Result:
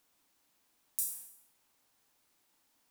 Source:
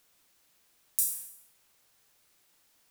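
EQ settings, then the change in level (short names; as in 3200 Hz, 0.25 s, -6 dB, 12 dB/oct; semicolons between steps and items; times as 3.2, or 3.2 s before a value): bell 270 Hz +8 dB 0.58 oct; bell 890 Hz +5.5 dB 0.72 oct; -6.5 dB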